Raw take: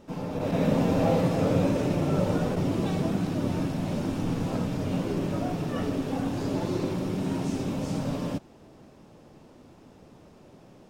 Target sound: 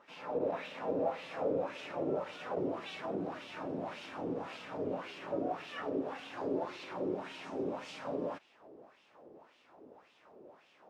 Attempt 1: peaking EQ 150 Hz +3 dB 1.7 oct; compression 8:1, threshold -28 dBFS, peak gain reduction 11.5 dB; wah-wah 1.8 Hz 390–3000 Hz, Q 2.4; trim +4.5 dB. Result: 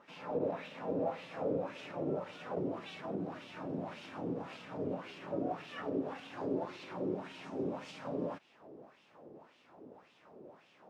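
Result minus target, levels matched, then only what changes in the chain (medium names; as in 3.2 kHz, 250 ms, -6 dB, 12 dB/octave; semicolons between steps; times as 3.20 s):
125 Hz band +4.5 dB
change: peaking EQ 150 Hz -4.5 dB 1.7 oct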